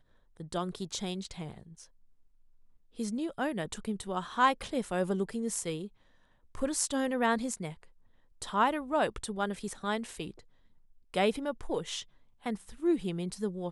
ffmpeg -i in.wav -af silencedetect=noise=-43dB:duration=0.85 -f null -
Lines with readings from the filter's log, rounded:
silence_start: 1.84
silence_end: 2.99 | silence_duration: 1.15